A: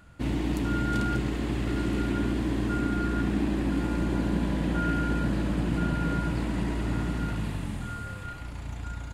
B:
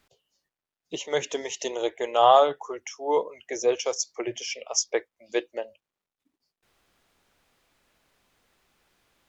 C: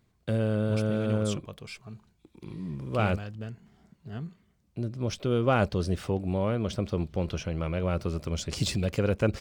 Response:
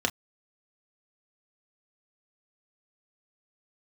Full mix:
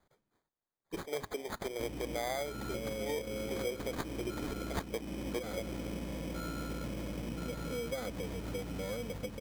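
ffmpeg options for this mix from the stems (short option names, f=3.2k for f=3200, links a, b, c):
-filter_complex "[0:a]adelay=1600,volume=-9dB[a];[1:a]equalizer=f=1.1k:w=1.4:g=-13,volume=-4.5dB[b];[2:a]aecho=1:1:4.1:0.82,adelay=2450,volume=-12.5dB[c];[a][c]amix=inputs=2:normalize=0,equalizer=f=520:w=3.1:g=11,acompressor=threshold=-38dB:ratio=2,volume=0dB[d];[b][d]amix=inputs=2:normalize=0,acrusher=samples=16:mix=1:aa=0.000001,acompressor=threshold=-33dB:ratio=6"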